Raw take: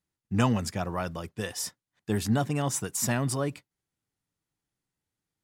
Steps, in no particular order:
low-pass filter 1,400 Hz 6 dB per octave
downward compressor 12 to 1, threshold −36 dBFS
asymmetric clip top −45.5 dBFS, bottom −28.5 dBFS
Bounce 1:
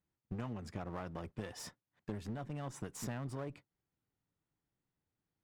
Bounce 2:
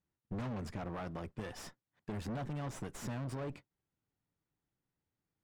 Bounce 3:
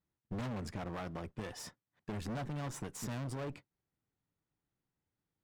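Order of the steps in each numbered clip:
low-pass filter, then downward compressor, then asymmetric clip
asymmetric clip, then low-pass filter, then downward compressor
low-pass filter, then asymmetric clip, then downward compressor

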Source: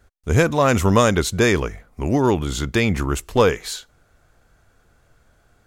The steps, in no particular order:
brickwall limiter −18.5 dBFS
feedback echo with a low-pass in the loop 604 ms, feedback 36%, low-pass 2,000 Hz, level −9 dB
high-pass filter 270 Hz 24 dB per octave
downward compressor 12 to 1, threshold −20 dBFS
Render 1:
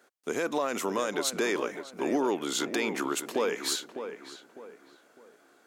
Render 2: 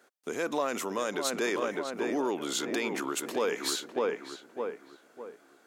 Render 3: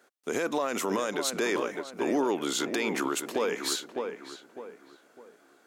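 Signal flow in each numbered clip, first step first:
downward compressor, then high-pass filter, then brickwall limiter, then feedback echo with a low-pass in the loop
feedback echo with a low-pass in the loop, then downward compressor, then brickwall limiter, then high-pass filter
high-pass filter, then downward compressor, then feedback echo with a low-pass in the loop, then brickwall limiter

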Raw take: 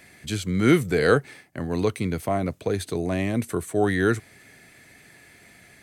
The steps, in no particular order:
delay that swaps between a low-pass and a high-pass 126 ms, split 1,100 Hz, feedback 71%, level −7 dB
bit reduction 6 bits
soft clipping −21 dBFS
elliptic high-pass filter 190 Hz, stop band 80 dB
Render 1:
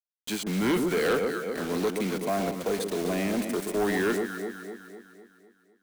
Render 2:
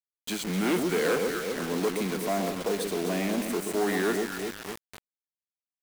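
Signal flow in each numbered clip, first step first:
elliptic high-pass filter, then bit reduction, then delay that swaps between a low-pass and a high-pass, then soft clipping
delay that swaps between a low-pass and a high-pass, then soft clipping, then elliptic high-pass filter, then bit reduction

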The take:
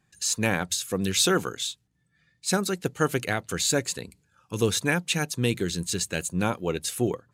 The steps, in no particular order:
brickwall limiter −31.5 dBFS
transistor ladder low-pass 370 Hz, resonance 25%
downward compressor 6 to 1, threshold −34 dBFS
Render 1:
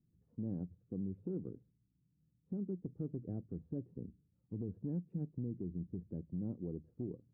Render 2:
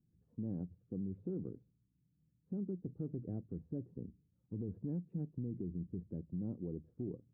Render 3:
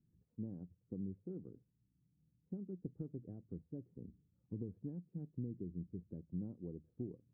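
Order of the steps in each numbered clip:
transistor ladder low-pass, then downward compressor, then brickwall limiter
transistor ladder low-pass, then brickwall limiter, then downward compressor
downward compressor, then transistor ladder low-pass, then brickwall limiter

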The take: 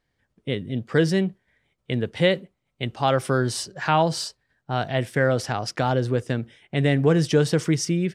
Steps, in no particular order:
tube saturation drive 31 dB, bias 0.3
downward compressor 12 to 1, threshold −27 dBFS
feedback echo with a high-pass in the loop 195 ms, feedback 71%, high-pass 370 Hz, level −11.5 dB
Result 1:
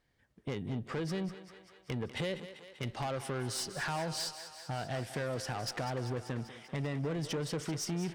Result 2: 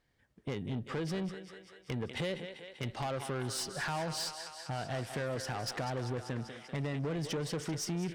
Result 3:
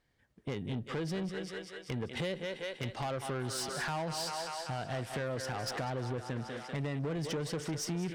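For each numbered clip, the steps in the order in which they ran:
downward compressor, then tube saturation, then feedback echo with a high-pass in the loop
downward compressor, then feedback echo with a high-pass in the loop, then tube saturation
feedback echo with a high-pass in the loop, then downward compressor, then tube saturation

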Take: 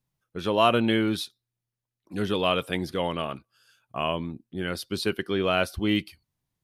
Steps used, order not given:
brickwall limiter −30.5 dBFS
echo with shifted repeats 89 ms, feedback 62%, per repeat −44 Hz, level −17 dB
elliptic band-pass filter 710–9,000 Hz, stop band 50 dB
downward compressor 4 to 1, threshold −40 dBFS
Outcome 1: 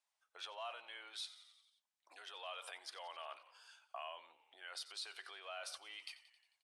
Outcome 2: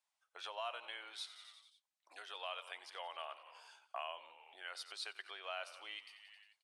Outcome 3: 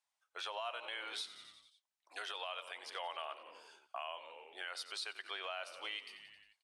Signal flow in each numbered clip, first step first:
brickwall limiter, then echo with shifted repeats, then downward compressor, then elliptic band-pass filter
echo with shifted repeats, then downward compressor, then elliptic band-pass filter, then brickwall limiter
elliptic band-pass filter, then echo with shifted repeats, then downward compressor, then brickwall limiter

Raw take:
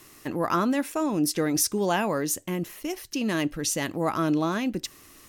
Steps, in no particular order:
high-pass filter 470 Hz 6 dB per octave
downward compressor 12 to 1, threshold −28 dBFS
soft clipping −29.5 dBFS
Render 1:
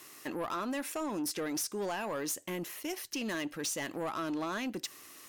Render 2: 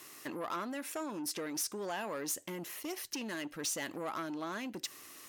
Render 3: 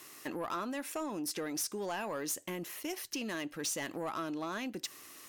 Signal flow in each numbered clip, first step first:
high-pass filter, then downward compressor, then soft clipping
downward compressor, then soft clipping, then high-pass filter
downward compressor, then high-pass filter, then soft clipping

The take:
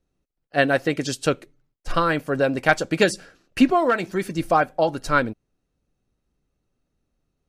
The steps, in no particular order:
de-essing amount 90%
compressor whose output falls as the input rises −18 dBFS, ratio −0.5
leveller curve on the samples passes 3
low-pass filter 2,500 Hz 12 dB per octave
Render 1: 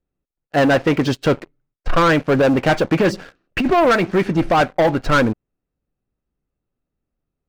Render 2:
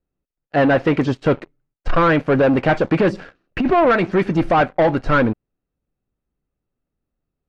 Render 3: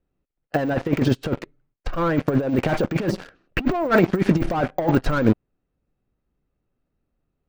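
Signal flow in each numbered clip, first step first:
low-pass filter, then de-essing, then compressor whose output falls as the input rises, then leveller curve on the samples
de-essing, then compressor whose output falls as the input rises, then leveller curve on the samples, then low-pass filter
low-pass filter, then leveller curve on the samples, then de-essing, then compressor whose output falls as the input rises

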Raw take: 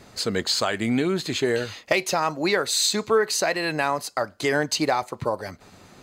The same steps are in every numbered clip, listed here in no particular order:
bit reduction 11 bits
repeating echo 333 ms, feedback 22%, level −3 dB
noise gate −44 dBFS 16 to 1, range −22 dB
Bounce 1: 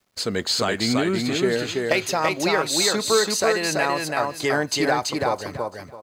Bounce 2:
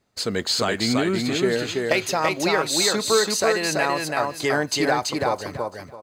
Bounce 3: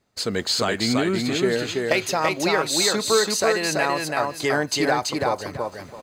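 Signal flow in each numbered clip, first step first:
noise gate, then bit reduction, then repeating echo
bit reduction, then noise gate, then repeating echo
bit reduction, then repeating echo, then noise gate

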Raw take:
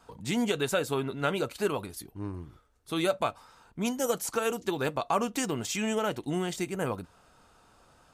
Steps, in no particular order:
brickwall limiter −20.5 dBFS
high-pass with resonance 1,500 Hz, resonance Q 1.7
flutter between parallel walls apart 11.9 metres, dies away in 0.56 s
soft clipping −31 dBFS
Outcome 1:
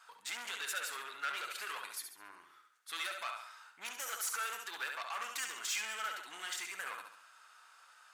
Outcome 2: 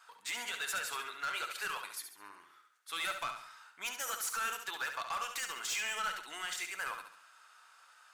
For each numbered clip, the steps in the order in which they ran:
brickwall limiter, then flutter between parallel walls, then soft clipping, then high-pass with resonance
high-pass with resonance, then brickwall limiter, then soft clipping, then flutter between parallel walls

